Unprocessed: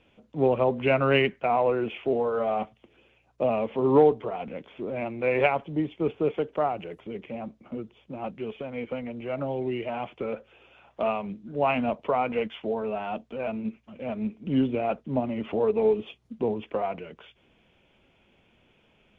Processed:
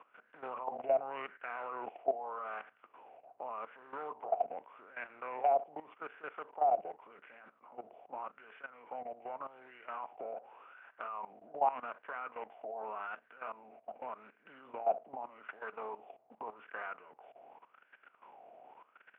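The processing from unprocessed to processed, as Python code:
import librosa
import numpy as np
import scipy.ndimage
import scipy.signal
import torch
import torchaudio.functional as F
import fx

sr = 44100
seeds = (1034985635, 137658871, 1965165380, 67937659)

y = fx.bin_compress(x, sr, power=0.6)
y = fx.wah_lfo(y, sr, hz=0.85, low_hz=680.0, high_hz=1600.0, q=9.6)
y = fx.level_steps(y, sr, step_db=15)
y = F.gain(torch.from_numpy(y), 3.5).numpy()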